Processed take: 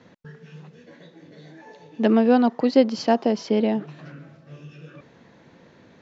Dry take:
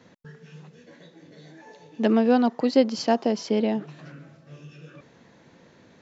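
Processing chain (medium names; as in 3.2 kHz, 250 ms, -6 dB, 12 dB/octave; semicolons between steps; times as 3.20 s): distance through air 81 m; trim +2.5 dB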